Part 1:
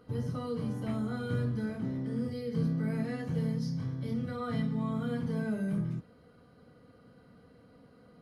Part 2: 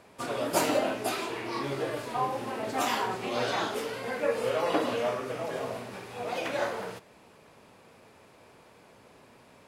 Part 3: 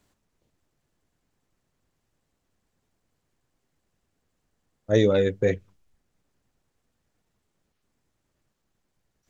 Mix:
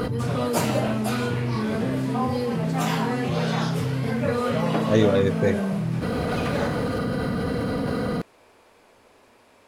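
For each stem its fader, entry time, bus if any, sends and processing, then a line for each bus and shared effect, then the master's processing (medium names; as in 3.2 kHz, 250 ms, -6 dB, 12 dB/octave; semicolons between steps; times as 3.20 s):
+2.0 dB, 0.00 s, no send, level flattener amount 100%
+1.0 dB, 0.00 s, no send, peaking EQ 150 Hz -13 dB 0.68 oct
0.0 dB, 0.00 s, no send, none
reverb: none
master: none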